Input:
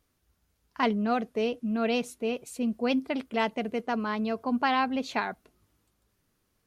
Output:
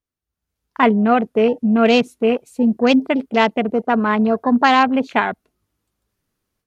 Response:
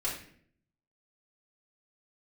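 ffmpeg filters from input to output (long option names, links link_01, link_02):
-af "afwtdn=0.0112,dynaudnorm=framelen=300:gausssize=3:maxgain=15dB"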